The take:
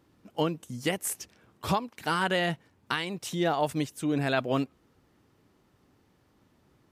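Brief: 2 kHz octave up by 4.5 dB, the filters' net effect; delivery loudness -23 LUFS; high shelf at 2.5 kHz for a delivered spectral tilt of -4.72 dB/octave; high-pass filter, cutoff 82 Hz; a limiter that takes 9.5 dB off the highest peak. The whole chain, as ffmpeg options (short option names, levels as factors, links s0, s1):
-af "highpass=82,equalizer=f=2000:t=o:g=8,highshelf=f=2500:g=-5,volume=2.99,alimiter=limit=0.335:level=0:latency=1"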